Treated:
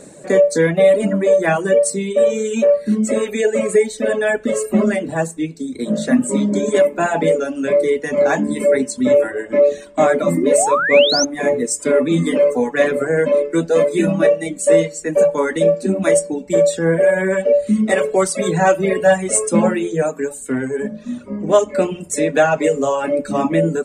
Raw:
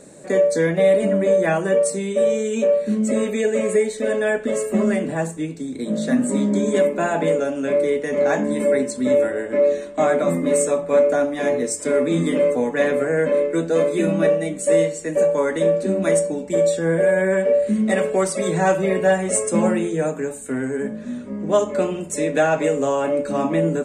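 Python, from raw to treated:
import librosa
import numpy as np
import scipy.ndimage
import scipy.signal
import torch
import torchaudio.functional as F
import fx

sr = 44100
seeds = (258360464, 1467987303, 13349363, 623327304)

y = fx.spec_paint(x, sr, seeds[0], shape='rise', start_s=10.36, length_s=0.89, low_hz=290.0, high_hz=6500.0, level_db=-23.0)
y = fx.dereverb_blind(y, sr, rt60_s=1.2)
y = F.gain(torch.from_numpy(y), 5.0).numpy()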